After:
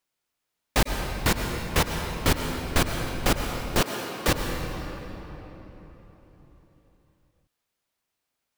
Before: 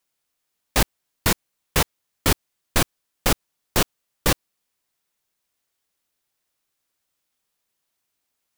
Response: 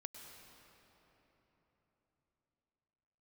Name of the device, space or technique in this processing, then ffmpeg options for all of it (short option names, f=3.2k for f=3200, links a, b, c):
swimming-pool hall: -filter_complex "[1:a]atrim=start_sample=2205[a];[0:a][a]afir=irnorm=-1:irlink=0,highshelf=f=5.3k:g=-6,asettb=1/sr,asplit=3[b][c][d];[b]atrim=end=3.814[e];[c]atrim=start=3.81:end=4.28,asetpts=PTS-STARTPTS,afade=t=in:d=0.004:c=qsin,afade=t=out:st=0.466:d=0.004:c=qsin,highpass=240[f];[d]atrim=start=4.276[g];[e][f]acrossfade=d=0.004:c1=hsin:c2=qsin[h];[h][g]acrossfade=d=0.004:c1=qsin:c2=hsin,volume=4dB"